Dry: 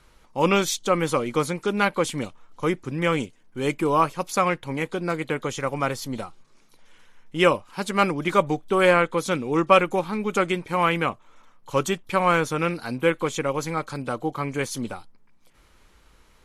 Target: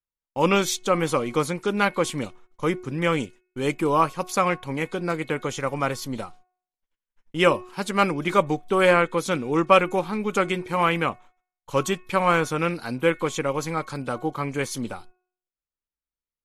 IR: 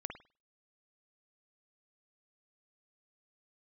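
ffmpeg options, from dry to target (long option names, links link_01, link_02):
-af "agate=range=-43dB:threshold=-43dB:ratio=16:detection=peak,bandreject=frequency=365:width_type=h:width=4,bandreject=frequency=730:width_type=h:width=4,bandreject=frequency=1095:width_type=h:width=4,bandreject=frequency=1460:width_type=h:width=4,bandreject=frequency=1825:width_type=h:width=4,bandreject=frequency=2190:width_type=h:width=4,bandreject=frequency=2555:width_type=h:width=4"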